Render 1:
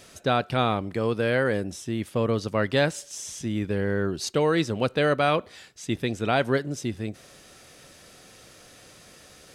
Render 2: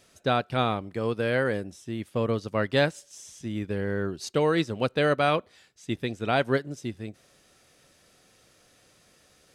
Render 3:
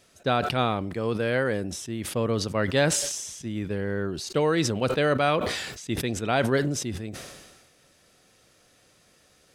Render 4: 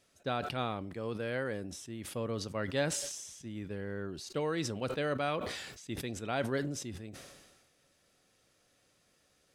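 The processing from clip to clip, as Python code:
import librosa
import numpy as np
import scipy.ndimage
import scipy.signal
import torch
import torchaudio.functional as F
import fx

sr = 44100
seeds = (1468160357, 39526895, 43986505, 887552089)

y1 = fx.upward_expand(x, sr, threshold_db=-39.0, expansion=1.5)
y2 = fx.sustainer(y1, sr, db_per_s=41.0)
y3 = fx.comb_fb(y2, sr, f0_hz=280.0, decay_s=0.19, harmonics='all', damping=0.0, mix_pct=40)
y3 = y3 * librosa.db_to_amplitude(-6.5)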